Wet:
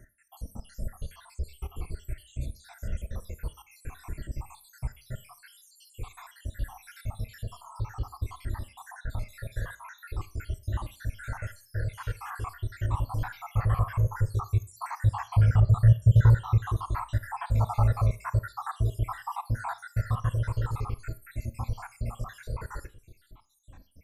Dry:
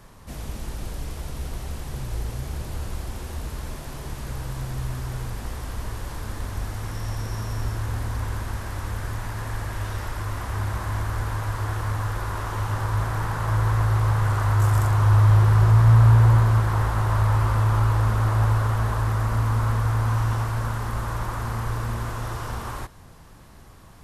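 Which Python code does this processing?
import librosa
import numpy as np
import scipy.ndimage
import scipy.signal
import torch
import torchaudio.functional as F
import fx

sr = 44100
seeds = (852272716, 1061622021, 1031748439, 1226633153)

y = fx.spec_dropout(x, sr, seeds[0], share_pct=77)
y = fx.peak_eq(y, sr, hz=5600.0, db=-5.0, octaves=0.46)
y = fx.rev_schroeder(y, sr, rt60_s=0.34, comb_ms=27, drr_db=15.0)
y = fx.dynamic_eq(y, sr, hz=840.0, q=1.1, threshold_db=-46.0, ratio=4.0, max_db=6, at=(17.6, 19.97))
y = fx.comb_cascade(y, sr, direction='falling', hz=0.47)
y = y * 10.0 ** (1.5 / 20.0)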